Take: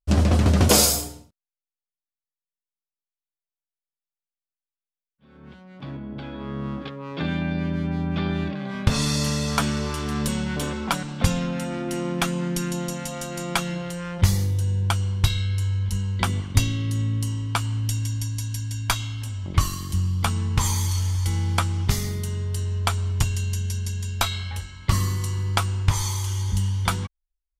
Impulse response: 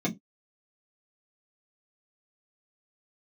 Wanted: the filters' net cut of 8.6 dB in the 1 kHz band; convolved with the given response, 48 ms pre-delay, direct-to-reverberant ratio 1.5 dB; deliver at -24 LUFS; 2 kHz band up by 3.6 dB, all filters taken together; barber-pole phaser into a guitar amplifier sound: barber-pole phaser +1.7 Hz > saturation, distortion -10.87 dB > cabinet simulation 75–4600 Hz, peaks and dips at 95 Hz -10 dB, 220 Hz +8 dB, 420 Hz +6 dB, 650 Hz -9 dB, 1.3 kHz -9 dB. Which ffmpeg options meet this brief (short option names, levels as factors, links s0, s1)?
-filter_complex "[0:a]equalizer=f=1000:t=o:g=-8,equalizer=f=2000:t=o:g=8.5,asplit=2[s0][s1];[1:a]atrim=start_sample=2205,adelay=48[s2];[s1][s2]afir=irnorm=-1:irlink=0,volume=0.355[s3];[s0][s3]amix=inputs=2:normalize=0,asplit=2[s4][s5];[s5]afreqshift=1.7[s6];[s4][s6]amix=inputs=2:normalize=1,asoftclip=threshold=0.2,highpass=75,equalizer=f=95:t=q:w=4:g=-10,equalizer=f=220:t=q:w=4:g=8,equalizer=f=420:t=q:w=4:g=6,equalizer=f=650:t=q:w=4:g=-9,equalizer=f=1300:t=q:w=4:g=-9,lowpass=f=4600:w=0.5412,lowpass=f=4600:w=1.3066,volume=0.562"